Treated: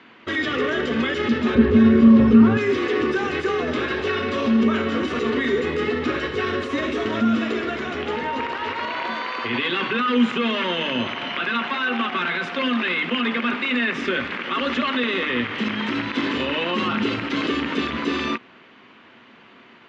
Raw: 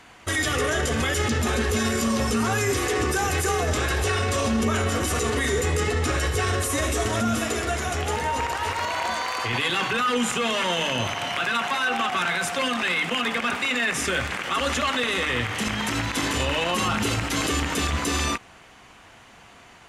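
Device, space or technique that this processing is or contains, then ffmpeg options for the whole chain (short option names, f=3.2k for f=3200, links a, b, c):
kitchen radio: -filter_complex "[0:a]asettb=1/sr,asplit=3[a][b][c];[a]atrim=end=1.554[d];[b]atrim=start=1.55:end=2.57,asetpts=PTS-STARTPTS,afade=t=in:d=0.004:c=qsin,afade=t=out:st=1.016:d=0.004:c=qsin,aemphasis=mode=reproduction:type=riaa[e];[c]atrim=start=2.566[f];[d][e]acrossfade=d=0.004:c1=hsin:c2=qsin[g];[g][f]acrossfade=d=0.004:c1=qsin:c2=hsin,highpass=180,equalizer=f=240:t=q:w=4:g=9,equalizer=f=370:t=q:w=4:g=5,equalizer=f=750:t=q:w=4:g=-8,lowpass=f=3.8k:w=0.5412,lowpass=f=3.8k:w=1.3066,volume=1dB"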